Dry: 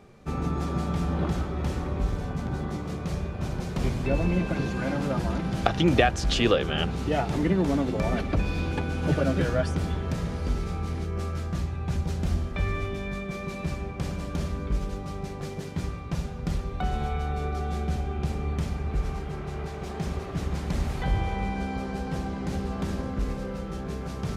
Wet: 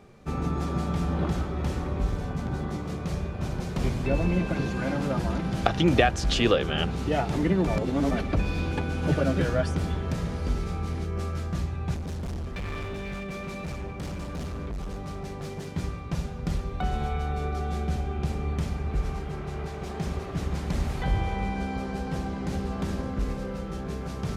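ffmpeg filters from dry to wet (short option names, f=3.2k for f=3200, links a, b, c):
-filter_complex "[0:a]asettb=1/sr,asplit=3[a][b][c];[a]atrim=end=11.944[d];[b]atrim=start=11.94:end=15.68,asetpts=PTS-STARTPTS,afade=t=in:d=0.004:c=qsin,afade=t=out:st=3.736:d=0.004:c=qsin,asoftclip=type=hard:threshold=-30.5dB[e];[c]atrim=start=15.676[f];[d][e]acrossfade=d=0.004:c1=hsin:c2=qsin[g];[g][f]acrossfade=d=0.004:c1=qsin:c2=hsin,asplit=3[h][i][j];[h]atrim=end=7.672[k];[i]atrim=start=7.668:end=8.112,asetpts=PTS-STARTPTS,areverse[l];[j]atrim=start=8.108[m];[k][l]acrossfade=d=0.004:c1=hsin:c2=hsin[n];[n][m]acrossfade=d=0.004:c1=hsin:c2=hsin"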